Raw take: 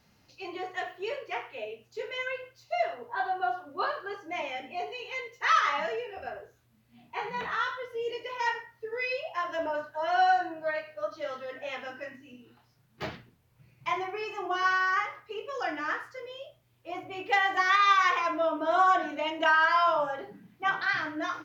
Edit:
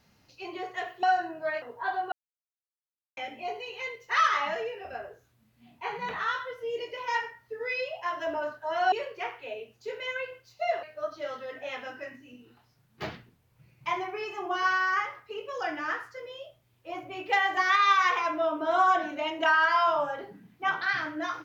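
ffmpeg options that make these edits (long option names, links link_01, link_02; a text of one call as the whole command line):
ffmpeg -i in.wav -filter_complex "[0:a]asplit=7[link_01][link_02][link_03][link_04][link_05][link_06][link_07];[link_01]atrim=end=1.032[link_08];[link_02]atrim=start=10.238:end=10.832[link_09];[link_03]atrim=start=2.938:end=3.44,asetpts=PTS-STARTPTS,afade=type=out:start_time=0.498:duration=0.004:curve=hsin[link_10];[link_04]atrim=start=3.44:end=4.49,asetpts=PTS-STARTPTS,volume=0[link_11];[link_05]atrim=start=4.49:end=10.242,asetpts=PTS-STARTPTS,afade=type=in:duration=0.004:curve=hsin[link_12];[link_06]atrim=start=1.028:end=2.942[link_13];[link_07]atrim=start=10.828[link_14];[link_08][link_09]acrossfade=duration=0.004:curve1=hsin:curve2=hsin[link_15];[link_10][link_11][link_12]concat=n=3:v=0:a=1[link_16];[link_15][link_16]acrossfade=duration=0.004:curve1=hsin:curve2=hsin[link_17];[link_17][link_13]acrossfade=duration=0.004:curve1=hsin:curve2=hsin[link_18];[link_18][link_14]acrossfade=duration=0.004:curve1=hsin:curve2=hsin" out.wav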